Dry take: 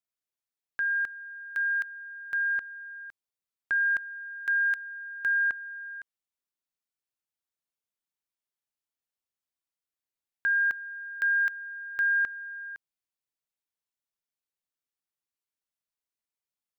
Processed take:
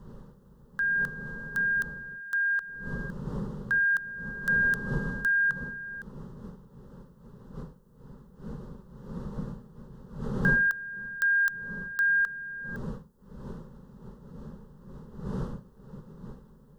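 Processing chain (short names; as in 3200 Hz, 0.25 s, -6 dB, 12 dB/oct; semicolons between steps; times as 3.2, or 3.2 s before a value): wind noise 130 Hz -31 dBFS; tilt +2.5 dB/oct; fixed phaser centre 460 Hz, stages 8; gain +3.5 dB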